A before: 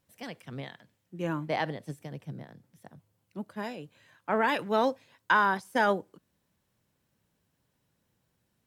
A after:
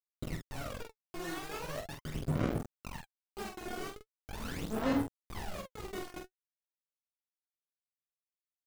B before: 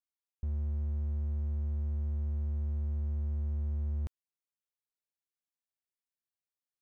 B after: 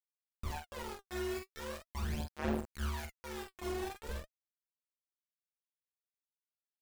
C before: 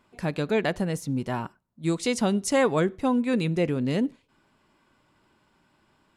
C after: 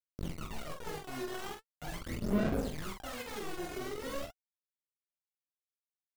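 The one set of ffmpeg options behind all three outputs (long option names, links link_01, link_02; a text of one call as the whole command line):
ffmpeg -i in.wav -filter_complex "[0:a]lowpass=4300,bandreject=frequency=3300:width=5.4,bandreject=frequency=69.8:width_type=h:width=4,bandreject=frequency=139.6:width_type=h:width=4,bandreject=frequency=209.4:width_type=h:width=4,bandreject=frequency=279.2:width_type=h:width=4,bandreject=frequency=349:width_type=h:width=4,acrossover=split=330|3000[link_01][link_02][link_03];[link_01]acompressor=threshold=-40dB:ratio=4[link_04];[link_02]acompressor=threshold=-39dB:ratio=4[link_05];[link_03]acompressor=threshold=-46dB:ratio=4[link_06];[link_04][link_05][link_06]amix=inputs=3:normalize=0,alimiter=level_in=9dB:limit=-24dB:level=0:latency=1:release=55,volume=-9dB,areverse,acompressor=threshold=-50dB:ratio=16,areverse,acrusher=samples=37:mix=1:aa=0.000001:lfo=1:lforange=37:lforate=0.56,flanger=delay=18:depth=6.4:speed=1.2,acrusher=bits=8:mix=0:aa=0.000001,aphaser=in_gain=1:out_gain=1:delay=2.8:decay=0.78:speed=0.41:type=sinusoidal,asplit=2[link_07][link_08];[link_08]aecho=0:1:19|46:0.251|0.531[link_09];[link_07][link_09]amix=inputs=2:normalize=0,volume=10.5dB" out.wav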